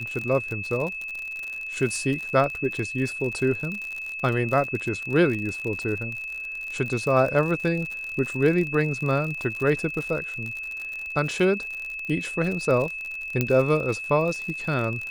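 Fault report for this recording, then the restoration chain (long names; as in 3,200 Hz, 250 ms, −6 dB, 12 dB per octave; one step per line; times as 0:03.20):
surface crackle 59 per second −29 dBFS
whistle 2,600 Hz −31 dBFS
0:13.41: click −8 dBFS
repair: click removal
notch filter 2,600 Hz, Q 30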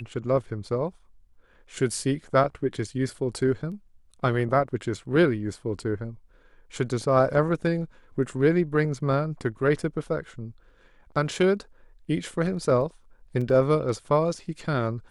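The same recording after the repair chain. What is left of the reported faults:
0:13.41: click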